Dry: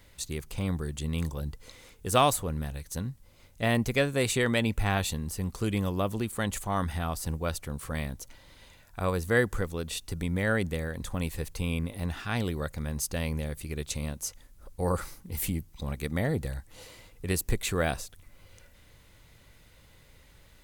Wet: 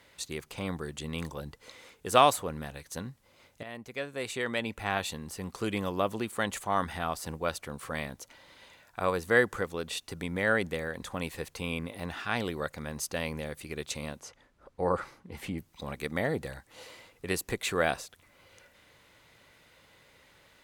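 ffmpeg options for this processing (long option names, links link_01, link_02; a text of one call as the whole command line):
ffmpeg -i in.wav -filter_complex "[0:a]asettb=1/sr,asplit=3[link_01][link_02][link_03];[link_01]atrim=end=14.204[link_04];[link_02]atrim=start=14.2:end=15.58,asetpts=PTS-STARTPTS,afade=type=in:duration=0.004:curve=qsin,afade=type=out:start_time=1.376:duration=0.004:curve=qsin,aemphasis=mode=reproduction:type=75fm[link_05];[link_03]atrim=start=15.576[link_06];[link_04][link_05]acrossfade=duration=0.004:curve1=hsin:curve2=qsin[link_07];[link_07][link_06]acrossfade=duration=0.004:curve1=qsin:curve2=hsin,asplit=2[link_08][link_09];[link_08]atrim=end=3.63,asetpts=PTS-STARTPTS,afade=type=out:start_time=3.626:duration=0.004:curve=hsin:silence=0.105925[link_10];[link_09]atrim=start=3.63,asetpts=PTS-STARTPTS,afade=type=in:duration=1.96:silence=0.105925[link_11];[link_10][link_11]concat=n=2:v=0:a=1,highpass=frequency=470:poles=1,aemphasis=mode=reproduction:type=cd,volume=3.5dB" out.wav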